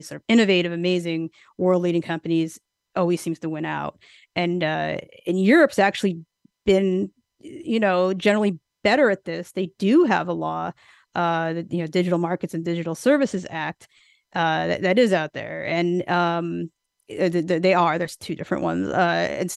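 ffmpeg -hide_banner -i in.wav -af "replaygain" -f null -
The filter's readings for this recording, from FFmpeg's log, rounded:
track_gain = +1.2 dB
track_peak = 0.404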